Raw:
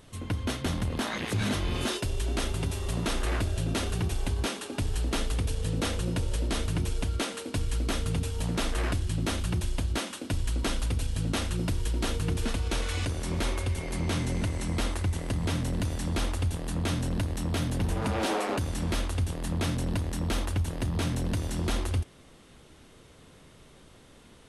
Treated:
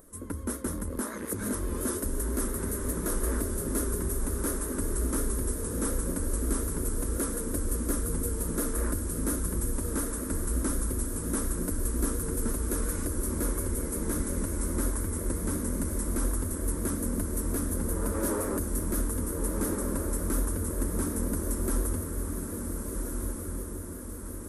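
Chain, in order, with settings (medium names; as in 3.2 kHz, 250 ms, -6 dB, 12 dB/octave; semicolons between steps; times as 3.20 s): static phaser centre 310 Hz, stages 4; echo that smears into a reverb 1487 ms, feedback 55%, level -3.5 dB; vibrato 5.6 Hz 65 cents; 17.52–19.06 s: added noise brown -51 dBFS; FFT filter 340 Hz 0 dB, 740 Hz +8 dB, 1.6 kHz -2 dB, 2.8 kHz -22 dB, 4.2 kHz -16 dB, 11 kHz +12 dB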